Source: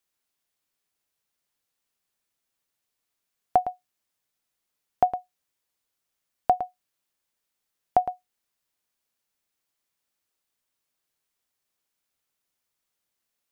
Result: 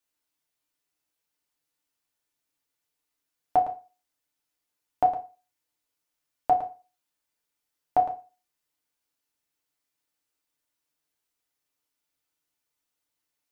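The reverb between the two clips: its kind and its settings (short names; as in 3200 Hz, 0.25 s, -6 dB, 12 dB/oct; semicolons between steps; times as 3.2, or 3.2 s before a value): FDN reverb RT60 0.32 s, low-frequency decay 0.95×, high-frequency decay 0.9×, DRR 0 dB; gain -4.5 dB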